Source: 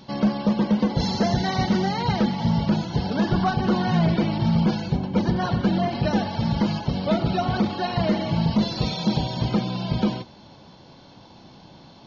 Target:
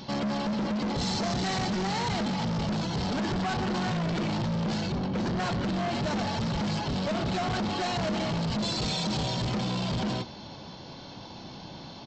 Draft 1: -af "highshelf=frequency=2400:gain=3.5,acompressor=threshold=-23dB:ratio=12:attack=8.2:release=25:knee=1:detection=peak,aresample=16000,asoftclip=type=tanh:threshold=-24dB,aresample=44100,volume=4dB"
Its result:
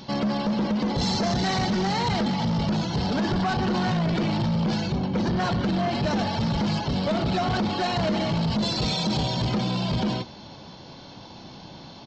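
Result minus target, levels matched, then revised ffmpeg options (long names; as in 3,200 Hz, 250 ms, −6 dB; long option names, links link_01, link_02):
soft clipping: distortion −6 dB
-af "highshelf=frequency=2400:gain=3.5,acompressor=threshold=-23dB:ratio=12:attack=8.2:release=25:knee=1:detection=peak,aresample=16000,asoftclip=type=tanh:threshold=-31dB,aresample=44100,volume=4dB"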